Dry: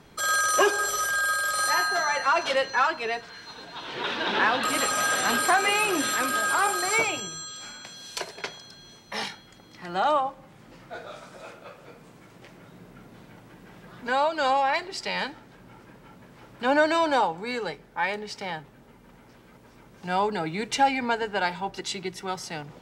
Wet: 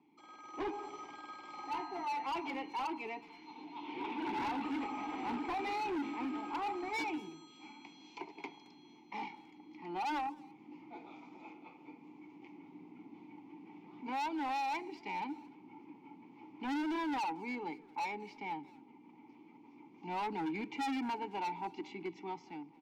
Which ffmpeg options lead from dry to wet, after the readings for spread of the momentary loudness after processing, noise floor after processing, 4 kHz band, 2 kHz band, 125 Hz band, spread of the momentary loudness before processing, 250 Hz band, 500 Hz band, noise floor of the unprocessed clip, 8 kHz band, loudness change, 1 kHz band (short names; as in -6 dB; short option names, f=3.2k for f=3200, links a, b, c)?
19 LU, -60 dBFS, -19.5 dB, -19.5 dB, -14.0 dB, 17 LU, -5.0 dB, -17.0 dB, -53 dBFS, -31.0 dB, -14.5 dB, -12.0 dB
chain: -filter_complex "[0:a]highpass=130,equalizer=f=1.5k:w=1.8:g=-4.5,bandreject=f=3.8k:w=18,acrossover=split=2100[a][b];[b]acompressor=threshold=-40dB:ratio=6[c];[a][c]amix=inputs=2:normalize=0,asplit=3[d][e][f];[d]bandpass=f=300:t=q:w=8,volume=0dB[g];[e]bandpass=f=870:t=q:w=8,volume=-6dB[h];[f]bandpass=f=2.24k:t=q:w=8,volume=-9dB[i];[g][h][i]amix=inputs=3:normalize=0,aresample=16000,asoftclip=type=tanh:threshold=-37.5dB,aresample=44100,dynaudnorm=f=120:g=9:m=10dB,asoftclip=type=hard:threshold=-30.5dB,asplit=2[j][k];[k]adelay=220,highpass=300,lowpass=3.4k,asoftclip=type=hard:threshold=-39dB,volume=-18dB[l];[j][l]amix=inputs=2:normalize=0,volume=-3.5dB"